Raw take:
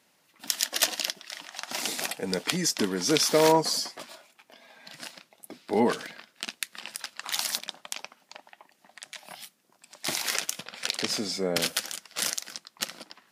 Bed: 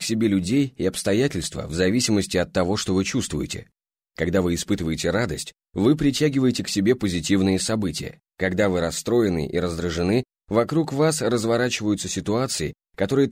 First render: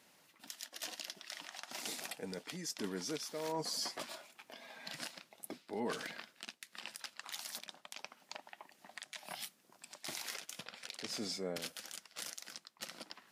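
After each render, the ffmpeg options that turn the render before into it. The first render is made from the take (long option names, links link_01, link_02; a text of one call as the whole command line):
ffmpeg -i in.wav -af "areverse,acompressor=threshold=-34dB:ratio=12,areverse,alimiter=level_in=3.5dB:limit=-24dB:level=0:latency=1:release=427,volume=-3.5dB" out.wav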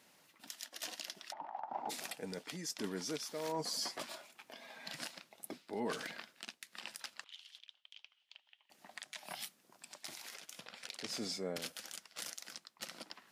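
ffmpeg -i in.wav -filter_complex "[0:a]asplit=3[link_01][link_02][link_03];[link_01]afade=type=out:start_time=1.31:duration=0.02[link_04];[link_02]lowpass=frequency=850:width_type=q:width=9,afade=type=in:start_time=1.31:duration=0.02,afade=type=out:start_time=1.89:duration=0.02[link_05];[link_03]afade=type=in:start_time=1.89:duration=0.02[link_06];[link_04][link_05][link_06]amix=inputs=3:normalize=0,asettb=1/sr,asplit=3[link_07][link_08][link_09];[link_07]atrim=end=7.244[link_10];[link_08]atrim=start=7.24:end=8.7,asetpts=PTS-STARTPTS,afade=type=in:duration=0.004:curve=qsin,afade=type=out:start_time=1.456:duration=0.004:curve=qsin,bandpass=frequency=3100:width_type=q:width=5.8[link_11];[link_09]atrim=start=8.696[link_12];[link_10][link_11]acrossfade=duration=0.004:curve1=hsin:curve2=qsin[link_13];[link_13][link_12]acrossfade=duration=0.004:curve1=qsin:curve2=hsin,asettb=1/sr,asplit=3[link_14][link_15][link_16];[link_14]atrim=end=10.064[link_17];[link_15]atrim=start=10.06:end=10.7,asetpts=PTS-STARTPTS,afade=type=in:duration=0.004:curve=qsin,afade=type=out:start_time=0.636:duration=0.004:curve=qsin,acompressor=threshold=-45dB:ratio=6:attack=3.2:release=140:knee=1:detection=peak[link_18];[link_16]atrim=start=10.696[link_19];[link_17][link_18]acrossfade=duration=0.004:curve1=hsin:curve2=qsin[link_20];[link_20][link_19]acrossfade=duration=0.004:curve1=qsin:curve2=hsin" out.wav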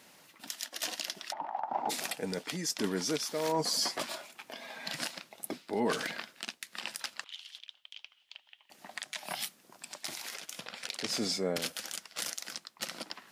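ffmpeg -i in.wav -af "volume=8dB" out.wav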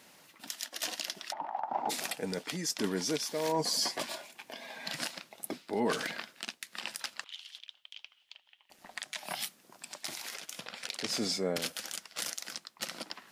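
ffmpeg -i in.wav -filter_complex "[0:a]asettb=1/sr,asplit=3[link_01][link_02][link_03];[link_01]atrim=end=2.944[link_04];[link_02]atrim=start=2.94:end=4.85,asetpts=PTS-STARTPTS,afade=type=in:duration=0.004:curve=qsin,afade=type=out:start_time=1.906:duration=0.004:curve=qsin,bandreject=frequency=1300:width=7.3[link_05];[link_03]atrim=start=4.846[link_06];[link_04][link_05]acrossfade=duration=0.004:curve1=hsin:curve2=qsin[link_07];[link_07][link_06]acrossfade=duration=0.004:curve1=qsin:curve2=hsin,asettb=1/sr,asplit=3[link_08][link_09][link_10];[link_08]atrim=end=8.334[link_11];[link_09]atrim=start=8.33:end=8.97,asetpts=PTS-STARTPTS,afade=type=in:duration=0.004:curve=qsin,afade=type=out:start_time=0.636:duration=0.004:curve=qsin,tremolo=f=180:d=0.571[link_12];[link_10]atrim=start=8.966[link_13];[link_11][link_12]acrossfade=duration=0.004:curve1=hsin:curve2=qsin[link_14];[link_14][link_13]acrossfade=duration=0.004:curve1=qsin:curve2=hsin" out.wav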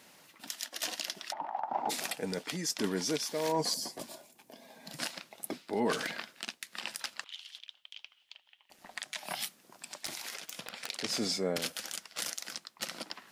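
ffmpeg -i in.wav -filter_complex "[0:a]asettb=1/sr,asplit=3[link_01][link_02][link_03];[link_01]atrim=end=3.744[link_04];[link_02]atrim=start=3.74:end=4.99,asetpts=PTS-STARTPTS,afade=type=in:duration=0.004:curve=qsin,afade=type=out:start_time=1.246:duration=0.004:curve=qsin,equalizer=frequency=2100:width_type=o:width=3:gain=-14.5[link_05];[link_03]atrim=start=4.986[link_06];[link_04][link_05]acrossfade=duration=0.004:curve1=hsin:curve2=qsin[link_07];[link_07][link_06]acrossfade=duration=0.004:curve1=qsin:curve2=hsin,asettb=1/sr,asplit=3[link_08][link_09][link_10];[link_08]atrim=end=10.064[link_11];[link_09]atrim=start=10.06:end=10.9,asetpts=PTS-STARTPTS,afade=type=in:duration=0.004:curve=qsin,afade=type=out:start_time=0.836:duration=0.004:curve=qsin,aeval=exprs='(mod(14.1*val(0)+1,2)-1)/14.1':channel_layout=same[link_12];[link_10]atrim=start=10.896[link_13];[link_11][link_12]acrossfade=duration=0.004:curve1=hsin:curve2=qsin[link_14];[link_14][link_13]acrossfade=duration=0.004:curve1=qsin:curve2=hsin" out.wav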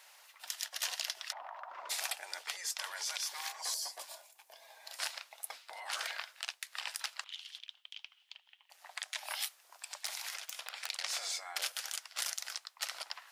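ffmpeg -i in.wav -af "afftfilt=real='re*lt(hypot(re,im),0.0631)':imag='im*lt(hypot(re,im),0.0631)':win_size=1024:overlap=0.75,highpass=frequency=700:width=0.5412,highpass=frequency=700:width=1.3066" out.wav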